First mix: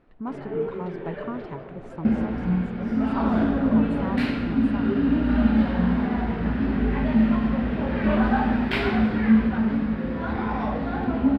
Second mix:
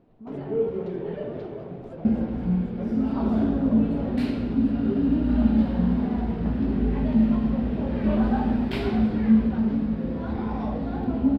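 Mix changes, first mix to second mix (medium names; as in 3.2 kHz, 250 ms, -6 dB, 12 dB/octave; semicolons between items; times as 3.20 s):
speech -9.5 dB; first sound +5.0 dB; master: add peaking EQ 1.7 kHz -11.5 dB 2 oct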